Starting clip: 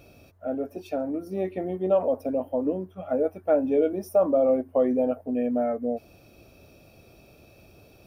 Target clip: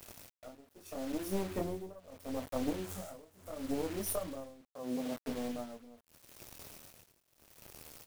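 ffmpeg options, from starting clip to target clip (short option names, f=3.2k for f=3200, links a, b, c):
-filter_complex "[0:a]asettb=1/sr,asplit=3[a][b][c];[a]atrim=end=2.844[d];[b]atrim=start=2.84:end=3.72,asetpts=PTS-STARTPTS,afade=t=in:d=0.004:c=qsin,afade=t=out:st=0.876:d=0.004:c=qsin,aeval=exprs='val(0)+0.5*0.0133*sgn(val(0))':c=same[e];[c]atrim=start=3.716[f];[d][e]acrossfade=d=0.004:c1=hsin:c2=qsin[g];[g][f]acrossfade=d=0.004:c1=qsin:c2=hsin,acrossover=split=180[h][i];[i]acompressor=threshold=-35dB:ratio=10[j];[h][j]amix=inputs=2:normalize=0,highshelf=f=5.2k:t=q:w=1.5:g=12.5,asplit=2[k][l];[l]adelay=244.9,volume=-30dB,highshelf=f=4k:g=-5.51[m];[k][m]amix=inputs=2:normalize=0,flanger=delay=22.5:depth=3.6:speed=0.45,aeval=exprs='0.0668*(cos(1*acos(clip(val(0)/0.0668,-1,1)))-cos(1*PI/2))+0.0188*(cos(4*acos(clip(val(0)/0.0668,-1,1)))-cos(4*PI/2))+0.00335*(cos(6*acos(clip(val(0)/0.0668,-1,1)))-cos(6*PI/2))':c=same,asettb=1/sr,asplit=3[n][o][p];[n]atrim=end=1.514[q];[o]atrim=start=1.51:end=2,asetpts=PTS-STARTPTS,afade=t=in:d=0.004:c=qsin,afade=t=out:st=0.486:d=0.004:c=qsin,acontrast=83[r];[p]atrim=start=1.996[s];[q][r]acrossfade=d=0.004:c1=hsin:c2=qsin[t];[t][s]acrossfade=d=0.004:c1=qsin:c2=hsin,asettb=1/sr,asplit=3[u][v][w];[u]atrim=end=4.614[x];[v]atrim=start=4.61:end=5.17,asetpts=PTS-STARTPTS,afade=t=in:d=0.004:c=qsin,afade=t=out:st=0.556:d=0.004:c=qsin,highpass=f=140:w=0.5412,highpass=f=140:w=1.3066[y];[w]atrim=start=5.166[z];[x][y]acrossfade=d=0.004:c1=hsin:c2=qsin[aa];[aa][z]acrossfade=d=0.004:c1=qsin:c2=hsin,acrusher=bits=7:mix=0:aa=0.000001,tremolo=f=0.76:d=0.93,volume=3.5dB"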